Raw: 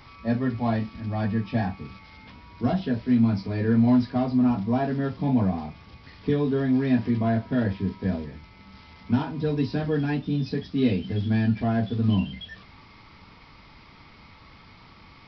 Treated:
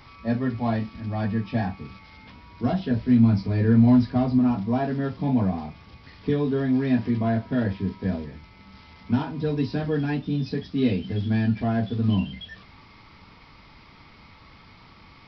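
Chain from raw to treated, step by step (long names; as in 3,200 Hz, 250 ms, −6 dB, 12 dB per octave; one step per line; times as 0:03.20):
0:02.91–0:04.39: low-shelf EQ 150 Hz +8.5 dB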